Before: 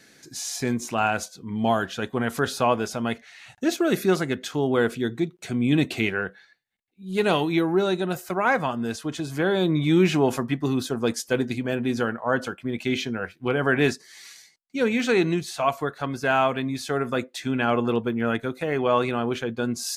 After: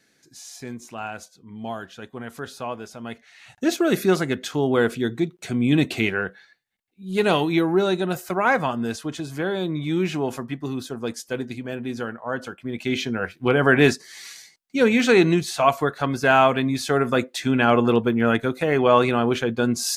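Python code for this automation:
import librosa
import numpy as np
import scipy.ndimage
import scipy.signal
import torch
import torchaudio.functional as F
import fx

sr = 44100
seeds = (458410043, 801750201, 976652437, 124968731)

y = fx.gain(x, sr, db=fx.line((2.96, -9.5), (3.66, 2.0), (8.83, 2.0), (9.73, -4.5), (12.38, -4.5), (13.34, 5.0)))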